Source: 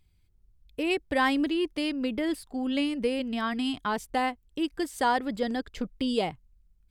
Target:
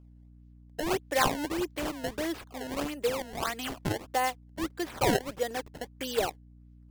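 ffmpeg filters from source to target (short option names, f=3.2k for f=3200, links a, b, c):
-af "highpass=f=360:w=0.5412,highpass=f=360:w=1.3066,acrusher=samples=21:mix=1:aa=0.000001:lfo=1:lforange=33.6:lforate=1.6,aeval=exprs='val(0)+0.00251*(sin(2*PI*60*n/s)+sin(2*PI*2*60*n/s)/2+sin(2*PI*3*60*n/s)/3+sin(2*PI*4*60*n/s)/4+sin(2*PI*5*60*n/s)/5)':c=same"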